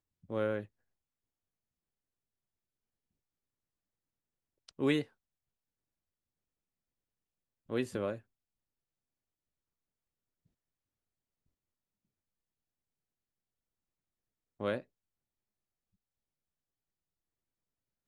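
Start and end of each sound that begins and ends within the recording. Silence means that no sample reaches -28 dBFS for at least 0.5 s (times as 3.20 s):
4.81–5.01 s
7.72–8.12 s
14.61–14.75 s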